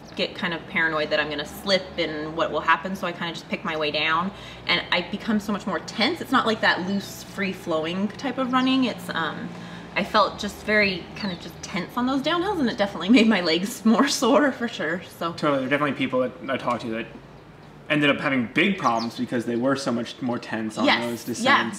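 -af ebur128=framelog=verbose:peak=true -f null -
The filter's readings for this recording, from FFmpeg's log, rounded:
Integrated loudness:
  I:         -23.5 LUFS
  Threshold: -33.8 LUFS
Loudness range:
  LRA:         3.9 LU
  Threshold: -43.7 LUFS
  LRA low:   -25.1 LUFS
  LRA high:  -21.2 LUFS
True peak:
  Peak:       -6.3 dBFS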